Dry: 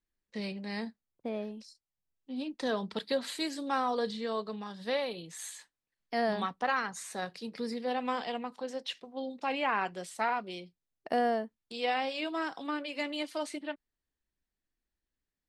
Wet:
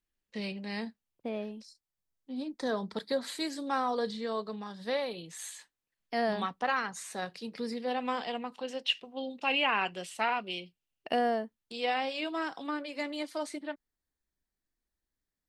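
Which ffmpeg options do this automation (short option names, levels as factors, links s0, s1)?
-af "asetnsamples=n=441:p=0,asendcmd='1.57 equalizer g -4.5;2.4 equalizer g -12;3.26 equalizer g -4;5.13 equalizer g 2;8.54 equalizer g 13;11.15 equalizer g 1;12.69 equalizer g -6.5',equalizer=f=2800:t=o:w=0.41:g=5"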